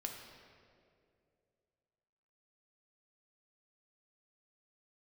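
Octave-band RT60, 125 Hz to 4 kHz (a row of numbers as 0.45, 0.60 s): 2.8, 2.6, 2.9, 2.0, 1.8, 1.5 s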